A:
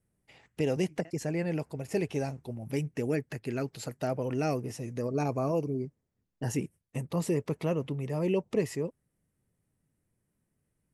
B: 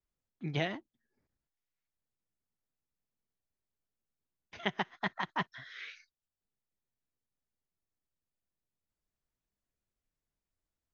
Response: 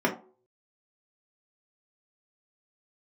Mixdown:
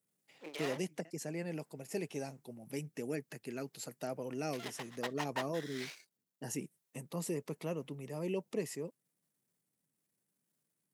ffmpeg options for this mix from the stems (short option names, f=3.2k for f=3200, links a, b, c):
-filter_complex "[0:a]highpass=f=150:w=0.5412,highpass=f=150:w=1.3066,volume=-8.5dB[a];[1:a]alimiter=level_in=1.5dB:limit=-24dB:level=0:latency=1:release=45,volume=-1.5dB,aeval=exprs='max(val(0),0)':c=same,highpass=f=350:w=0.5412,highpass=f=350:w=1.3066,volume=2.5dB[b];[a][b]amix=inputs=2:normalize=0,highshelf=f=5.2k:g=10"